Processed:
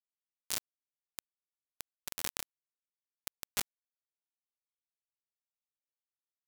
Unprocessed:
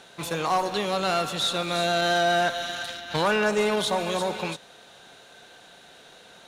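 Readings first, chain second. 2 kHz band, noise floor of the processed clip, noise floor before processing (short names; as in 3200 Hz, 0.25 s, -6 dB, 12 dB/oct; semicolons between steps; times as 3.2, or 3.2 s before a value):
-23.0 dB, under -85 dBFS, -51 dBFS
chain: spectral gate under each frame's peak -30 dB weak; bit-crush 5-bit; gain +11.5 dB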